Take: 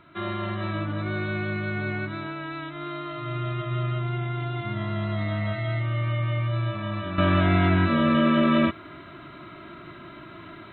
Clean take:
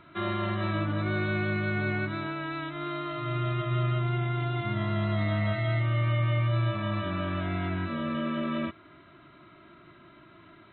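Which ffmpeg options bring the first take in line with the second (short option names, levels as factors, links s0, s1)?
-af "asetnsamples=n=441:p=0,asendcmd='7.18 volume volume -10.5dB',volume=1"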